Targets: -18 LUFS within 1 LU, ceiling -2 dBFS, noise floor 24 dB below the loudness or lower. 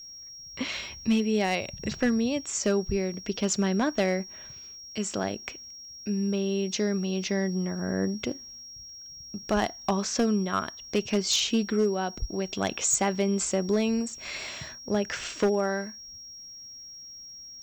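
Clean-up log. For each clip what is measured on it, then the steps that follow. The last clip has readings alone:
clipped 0.4%; flat tops at -17.5 dBFS; steady tone 5600 Hz; tone level -42 dBFS; loudness -28.0 LUFS; peak -17.5 dBFS; loudness target -18.0 LUFS
-> clip repair -17.5 dBFS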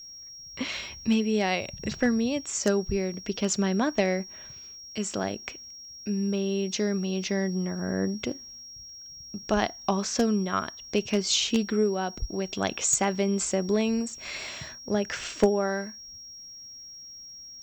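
clipped 0.0%; steady tone 5600 Hz; tone level -42 dBFS
-> notch 5600 Hz, Q 30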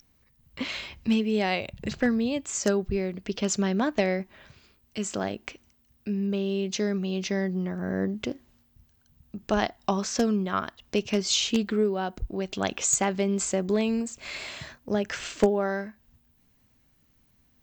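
steady tone none; loudness -28.0 LUFS; peak -8.5 dBFS; loudness target -18.0 LUFS
-> gain +10 dB; limiter -2 dBFS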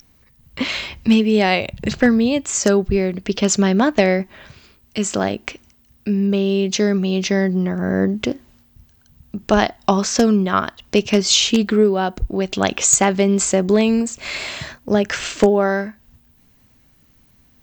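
loudness -18.0 LUFS; peak -2.0 dBFS; noise floor -55 dBFS

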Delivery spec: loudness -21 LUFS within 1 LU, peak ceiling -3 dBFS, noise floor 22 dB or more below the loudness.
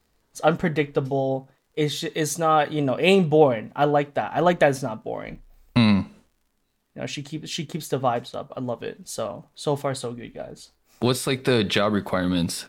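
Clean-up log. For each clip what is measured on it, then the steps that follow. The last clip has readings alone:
ticks 29/s; loudness -23.5 LUFS; peak -4.0 dBFS; loudness target -21.0 LUFS
-> de-click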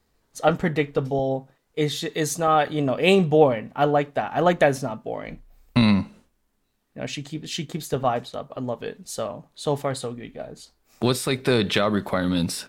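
ticks 0.16/s; loudness -23.5 LUFS; peak -4.0 dBFS; loudness target -21.0 LUFS
-> gain +2.5 dB; limiter -3 dBFS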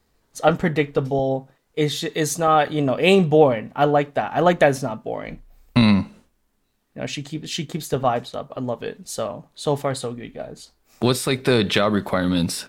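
loudness -21.0 LUFS; peak -3.0 dBFS; noise floor -67 dBFS

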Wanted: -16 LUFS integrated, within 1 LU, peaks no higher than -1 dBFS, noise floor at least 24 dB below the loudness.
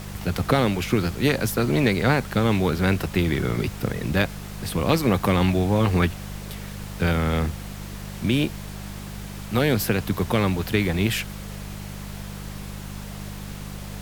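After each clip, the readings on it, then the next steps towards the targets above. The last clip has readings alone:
hum 50 Hz; harmonics up to 200 Hz; hum level -35 dBFS; noise floor -36 dBFS; noise floor target -47 dBFS; loudness -23.0 LUFS; peak -5.5 dBFS; loudness target -16.0 LUFS
-> de-hum 50 Hz, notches 4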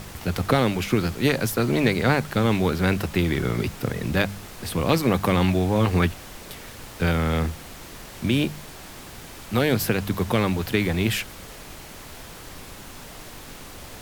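hum none; noise floor -41 dBFS; noise floor target -48 dBFS
-> noise print and reduce 7 dB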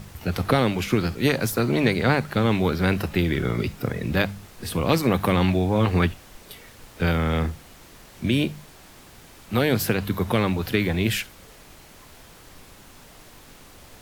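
noise floor -48 dBFS; loudness -23.5 LUFS; peak -5.5 dBFS; loudness target -16.0 LUFS
-> gain +7.5 dB; limiter -1 dBFS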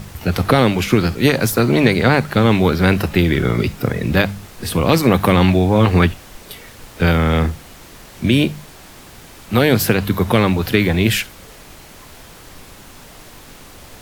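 loudness -16.0 LUFS; peak -1.0 dBFS; noise floor -41 dBFS

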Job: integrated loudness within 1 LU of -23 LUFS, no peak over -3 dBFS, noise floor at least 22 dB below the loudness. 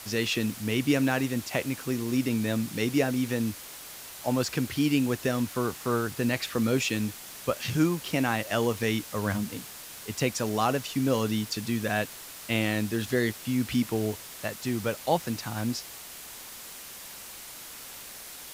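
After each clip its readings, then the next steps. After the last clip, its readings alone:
noise floor -44 dBFS; noise floor target -51 dBFS; loudness -28.5 LUFS; peak -11.0 dBFS; loudness target -23.0 LUFS
-> noise print and reduce 7 dB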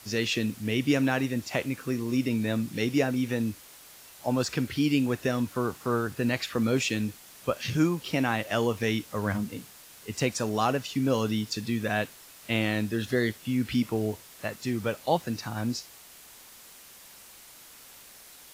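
noise floor -51 dBFS; loudness -28.5 LUFS; peak -11.0 dBFS; loudness target -23.0 LUFS
-> gain +5.5 dB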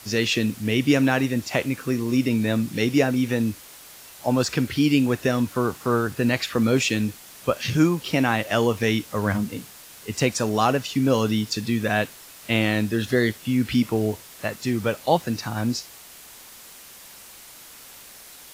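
loudness -23.0 LUFS; peak -5.5 dBFS; noise floor -45 dBFS

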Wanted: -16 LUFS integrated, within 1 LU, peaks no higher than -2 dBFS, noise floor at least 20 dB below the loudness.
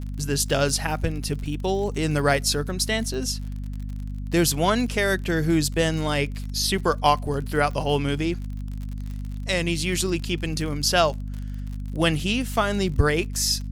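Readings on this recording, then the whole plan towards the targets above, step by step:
ticks 47/s; hum 50 Hz; harmonics up to 250 Hz; hum level -29 dBFS; loudness -24.0 LUFS; peak -5.0 dBFS; loudness target -16.0 LUFS
-> de-click; de-hum 50 Hz, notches 5; gain +8 dB; limiter -2 dBFS

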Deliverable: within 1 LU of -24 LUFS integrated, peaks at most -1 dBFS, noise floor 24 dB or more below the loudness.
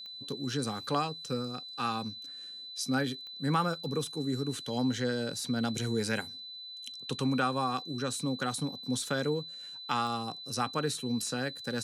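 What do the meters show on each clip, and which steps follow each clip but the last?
clicks 4; steady tone 4000 Hz; tone level -42 dBFS; loudness -33.0 LUFS; peak -16.0 dBFS; loudness target -24.0 LUFS
-> de-click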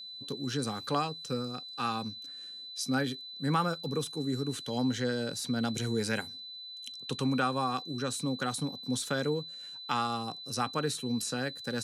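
clicks 0; steady tone 4000 Hz; tone level -42 dBFS
-> notch 4000 Hz, Q 30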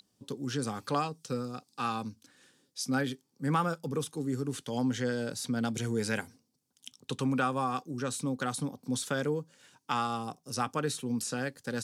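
steady tone none; loudness -33.5 LUFS; peak -16.0 dBFS; loudness target -24.0 LUFS
-> gain +9.5 dB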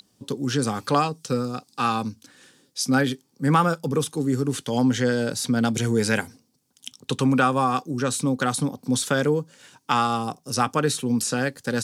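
loudness -24.0 LUFS; peak -6.5 dBFS; noise floor -66 dBFS

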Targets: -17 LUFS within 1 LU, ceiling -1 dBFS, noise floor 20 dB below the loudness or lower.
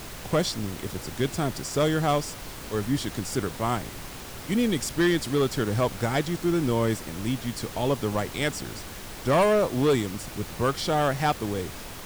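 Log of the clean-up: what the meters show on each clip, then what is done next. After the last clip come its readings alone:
clipped 1.4%; flat tops at -16.5 dBFS; noise floor -40 dBFS; noise floor target -47 dBFS; loudness -26.5 LUFS; peak -16.5 dBFS; loudness target -17.0 LUFS
-> clip repair -16.5 dBFS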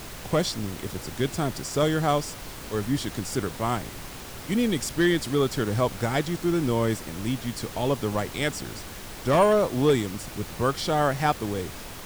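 clipped 0.0%; noise floor -40 dBFS; noise floor target -46 dBFS
-> noise print and reduce 6 dB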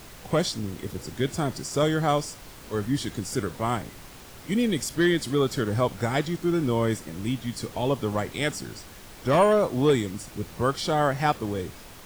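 noise floor -45 dBFS; noise floor target -47 dBFS
-> noise print and reduce 6 dB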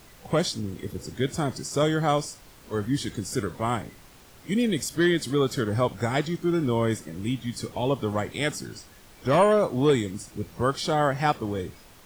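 noise floor -51 dBFS; loudness -26.5 LUFS; peak -9.0 dBFS; loudness target -17.0 LUFS
-> gain +9.5 dB; limiter -1 dBFS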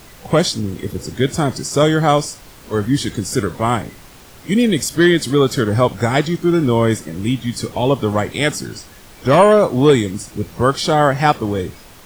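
loudness -17.0 LUFS; peak -1.0 dBFS; noise floor -42 dBFS

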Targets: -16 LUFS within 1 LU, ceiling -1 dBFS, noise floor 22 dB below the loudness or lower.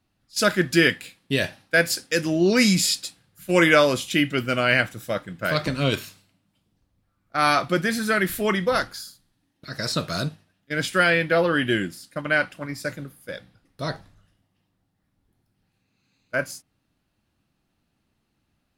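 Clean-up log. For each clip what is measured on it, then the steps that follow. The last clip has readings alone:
loudness -22.5 LUFS; peak -3.5 dBFS; loudness target -16.0 LUFS
-> gain +6.5 dB; limiter -1 dBFS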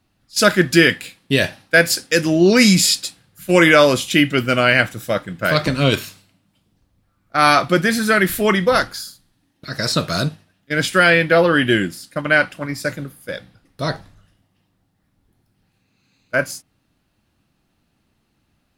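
loudness -16.5 LUFS; peak -1.0 dBFS; noise floor -67 dBFS

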